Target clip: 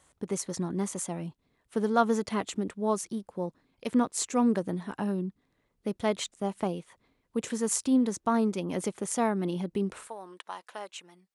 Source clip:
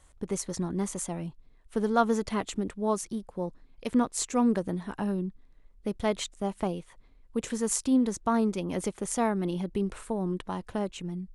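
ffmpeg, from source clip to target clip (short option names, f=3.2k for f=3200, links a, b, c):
-af "asetnsamples=n=441:p=0,asendcmd='10.07 highpass f 850',highpass=120"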